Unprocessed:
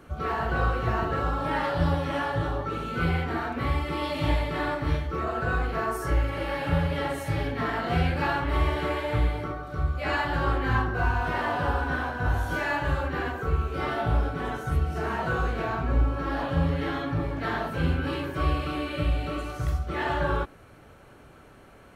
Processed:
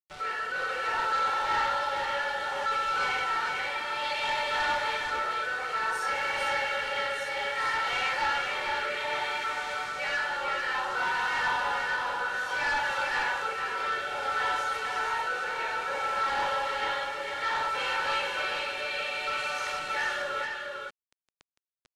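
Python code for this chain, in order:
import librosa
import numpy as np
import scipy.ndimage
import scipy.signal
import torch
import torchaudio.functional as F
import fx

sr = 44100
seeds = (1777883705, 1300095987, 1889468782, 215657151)

p1 = scipy.signal.sosfilt(scipy.signal.butter(4, 640.0, 'highpass', fs=sr, output='sos'), x)
p2 = fx.tilt_shelf(p1, sr, db=-4.0, hz=970.0)
p3 = p2 + 0.89 * np.pad(p2, (int(2.2 * sr / 1000.0), 0))[:len(p2)]
p4 = fx.rider(p3, sr, range_db=4, speed_s=0.5)
p5 = p3 + F.gain(torch.from_numpy(p4), -1.0).numpy()
p6 = fx.quant_dither(p5, sr, seeds[0], bits=6, dither='none')
p7 = fx.rotary(p6, sr, hz=0.6)
p8 = 10.0 ** (-24.5 / 20.0) * np.tanh(p7 / 10.0 ** (-24.5 / 20.0))
p9 = fx.air_absorb(p8, sr, metres=79.0)
y = p9 + fx.echo_single(p9, sr, ms=449, db=-4.5, dry=0)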